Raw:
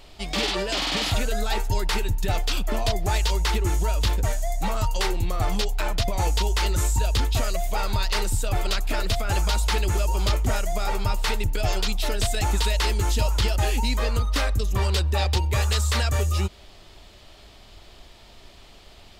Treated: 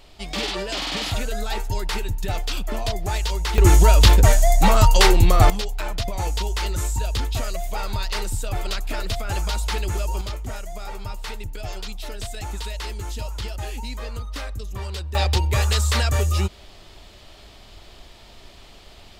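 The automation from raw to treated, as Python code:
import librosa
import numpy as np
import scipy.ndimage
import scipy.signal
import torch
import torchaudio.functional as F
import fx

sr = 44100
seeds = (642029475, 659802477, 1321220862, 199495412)

y = fx.gain(x, sr, db=fx.steps((0.0, -1.5), (3.58, 10.5), (5.5, -2.0), (10.21, -8.0), (15.15, 2.5)))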